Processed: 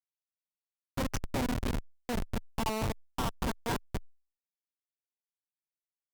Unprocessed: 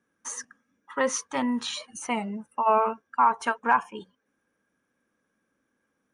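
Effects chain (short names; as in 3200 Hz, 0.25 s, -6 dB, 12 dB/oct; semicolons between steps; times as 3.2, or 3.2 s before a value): compressor 8:1, threshold -23 dBFS, peak gain reduction 8.5 dB; on a send: feedback echo 0.236 s, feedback 31%, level -6.5 dB; on the sum: Schmitt trigger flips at -23.5 dBFS; gain +3 dB; Opus 256 kbps 48000 Hz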